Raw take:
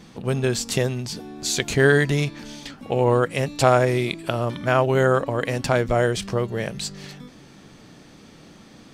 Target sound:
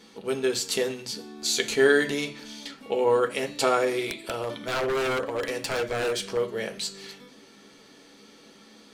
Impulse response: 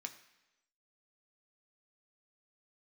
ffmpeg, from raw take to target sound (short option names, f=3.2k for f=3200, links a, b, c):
-filter_complex "[1:a]atrim=start_sample=2205,asetrate=79380,aresample=44100[a];[0:a][a]afir=irnorm=-1:irlink=0,asettb=1/sr,asplit=3[b][c][d];[b]atrim=end=4.024[e];[c]atrim=start=4.02:end=6.37,asetpts=PTS-STARTPTS,afade=t=in:d=0.004:c=qsin,afade=t=out:st=2.346:d=0.004:c=qsin,aeval=exprs='0.0398*(abs(mod(val(0)/0.0398+3,4)-2)-1)':c=same[f];[d]atrim=start=6.366[g];[e][f]acrossfade=d=0.004:c1=hsin:c2=qsin[h];[h][g]acrossfade=d=0.004:c1=qsin:c2=hsin,volume=6.5dB"